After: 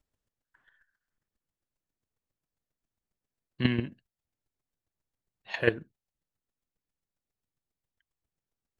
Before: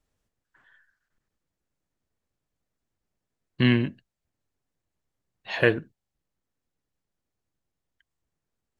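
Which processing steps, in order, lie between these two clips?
chopper 7.4 Hz, depth 65%, duty 10%

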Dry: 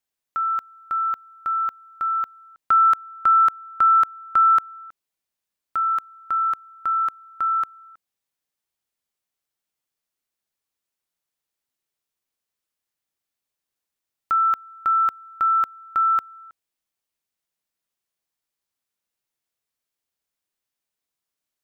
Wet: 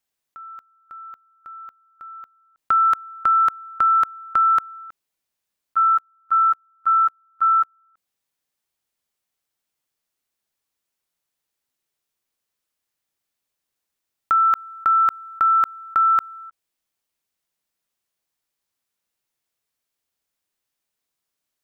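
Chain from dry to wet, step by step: level quantiser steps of 22 dB; gain +6 dB

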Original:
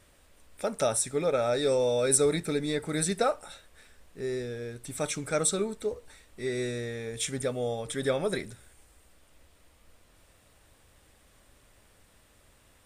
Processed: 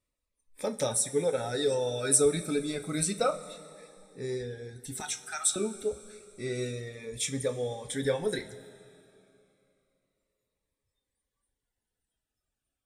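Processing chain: spectral noise reduction 24 dB; 5–5.56 steep high-pass 690 Hz 96 dB/oct; reverb removal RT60 1.1 s; two-slope reverb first 0.23 s, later 3 s, from -18 dB, DRR 5.5 dB; cascading phaser falling 0.29 Hz

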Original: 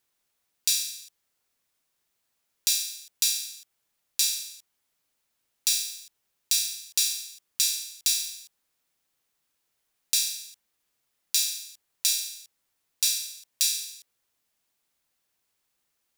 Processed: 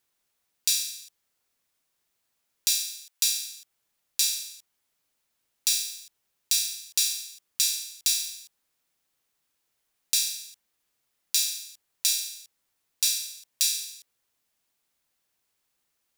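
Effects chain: 2.7–3.33 HPF 840 Hz 12 dB/oct

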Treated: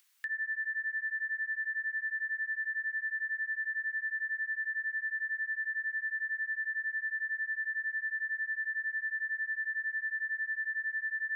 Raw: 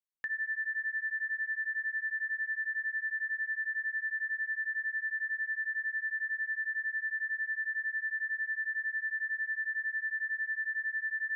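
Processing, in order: Chebyshev high-pass 1600 Hz, order 2; upward compressor, threshold -48 dBFS

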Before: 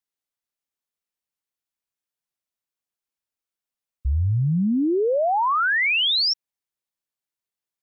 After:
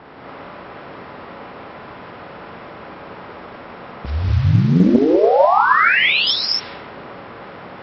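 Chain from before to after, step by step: per-bin compression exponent 0.4; 4.1–6.27 LPF 1800 Hz 6 dB/oct; low-pass opened by the level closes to 930 Hz, open at -18.5 dBFS; low shelf 76 Hz -11 dB; limiter -19 dBFS, peak gain reduction 10.5 dB; non-linear reverb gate 0.28 s rising, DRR -4.5 dB; Doppler distortion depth 0.44 ms; gain +3.5 dB

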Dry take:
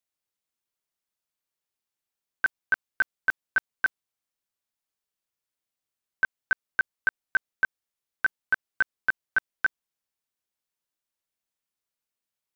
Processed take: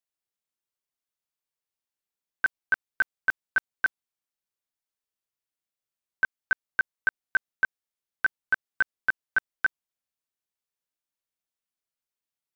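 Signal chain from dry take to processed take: upward expander 1.5:1, over -29 dBFS

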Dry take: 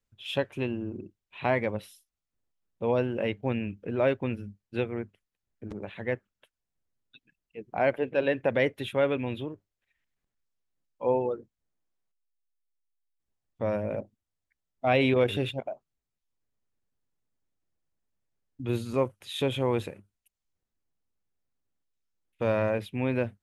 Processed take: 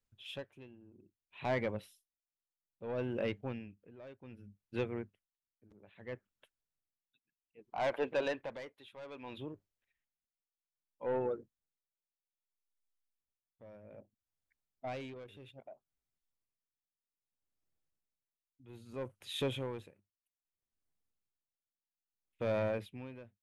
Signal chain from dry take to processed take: 7.59–9.38 graphic EQ 125/1000/4000 Hz -8/+11/+8 dB; soft clip -20.5 dBFS, distortion -11 dB; dB-linear tremolo 0.62 Hz, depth 20 dB; gain -4.5 dB

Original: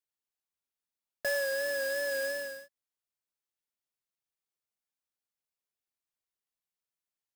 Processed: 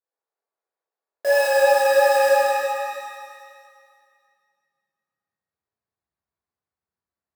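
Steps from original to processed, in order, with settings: Wiener smoothing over 15 samples; high-pass sweep 490 Hz -> 74 Hz, 3.12–5.65; analogue delay 0.118 s, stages 4096, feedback 71%, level -18 dB; shimmer reverb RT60 1.9 s, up +7 st, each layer -8 dB, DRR -8.5 dB

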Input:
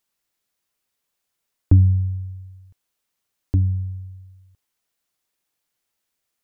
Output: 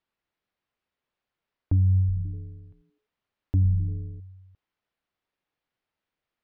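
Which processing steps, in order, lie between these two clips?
limiter -16 dBFS, peak gain reduction 10.5 dB; air absorption 300 m; 1.99–4.2 frequency-shifting echo 84 ms, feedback 43%, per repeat -130 Hz, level -13.5 dB

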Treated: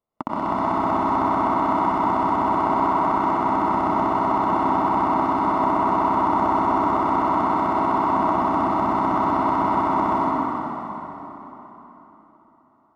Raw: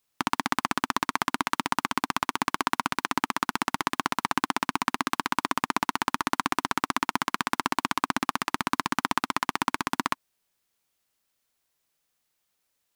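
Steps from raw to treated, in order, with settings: polynomial smoothing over 65 samples; bell 630 Hz +9 dB 0.21 oct; plate-style reverb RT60 4 s, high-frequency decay 0.75×, pre-delay 80 ms, DRR -9.5 dB

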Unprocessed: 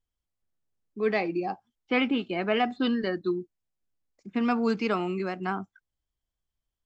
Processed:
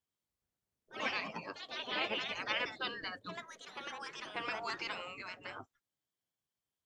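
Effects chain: echoes that change speed 0.102 s, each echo +3 st, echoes 2, each echo -6 dB; spectral gate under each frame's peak -15 dB weak; gain -1.5 dB

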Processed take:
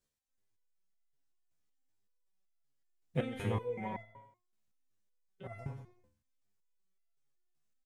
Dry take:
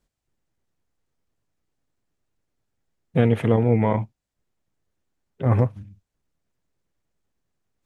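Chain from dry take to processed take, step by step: high shelf 2300 Hz +9 dB; feedback echo 92 ms, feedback 43%, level -11.5 dB; stepped resonator 5.3 Hz 73–680 Hz; gain -3.5 dB

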